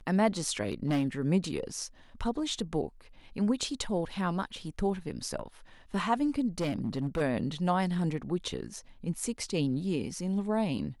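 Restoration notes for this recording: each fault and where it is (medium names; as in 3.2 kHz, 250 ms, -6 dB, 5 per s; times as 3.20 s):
0.65–1.07 s: clipped -23.5 dBFS
6.58–7.22 s: clipped -26 dBFS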